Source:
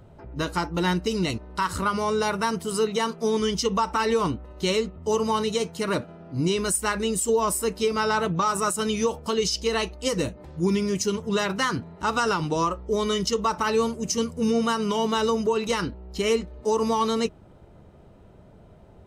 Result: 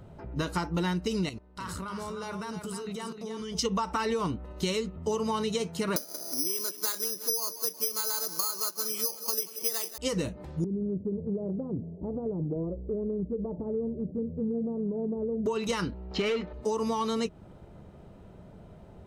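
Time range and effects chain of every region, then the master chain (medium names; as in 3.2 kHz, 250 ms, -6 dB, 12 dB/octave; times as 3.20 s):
1.29–3.59 s: level held to a coarse grid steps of 19 dB + delay 308 ms -7 dB
4.56–4.97 s: treble shelf 5.5 kHz +5 dB + band-stop 700 Hz, Q 7.2
5.96–9.98 s: high-pass 280 Hz 24 dB/octave + feedback delay 182 ms, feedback 54%, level -17 dB + careless resampling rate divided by 8×, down filtered, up zero stuff
10.64–15.46 s: steep low-pass 580 Hz + compression 2:1, threshold -32 dBFS
16.11–16.53 s: distance through air 180 m + overdrive pedal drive 18 dB, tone 4.2 kHz, clips at -13.5 dBFS
whole clip: peaking EQ 180 Hz +3.5 dB 0.57 oct; compression, threshold -26 dBFS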